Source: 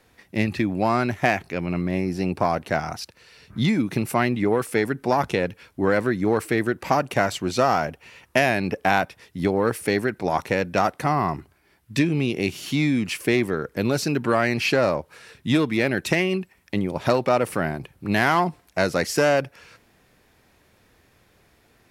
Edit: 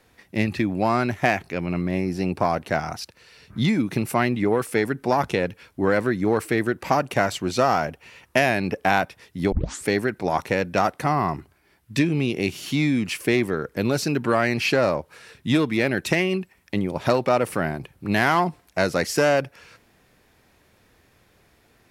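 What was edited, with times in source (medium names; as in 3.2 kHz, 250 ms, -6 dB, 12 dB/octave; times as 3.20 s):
9.52 s: tape start 0.34 s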